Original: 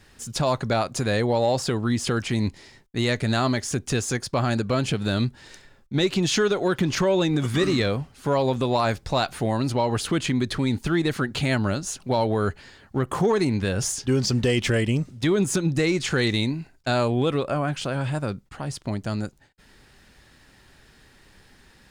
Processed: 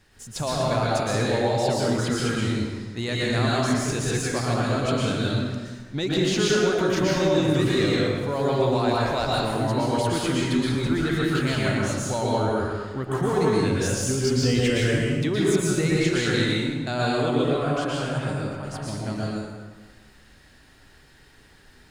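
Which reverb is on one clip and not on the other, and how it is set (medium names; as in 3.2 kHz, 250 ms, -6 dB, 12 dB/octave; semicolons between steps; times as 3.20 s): plate-style reverb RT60 1.4 s, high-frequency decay 0.75×, pre-delay 105 ms, DRR -5.5 dB; trim -6 dB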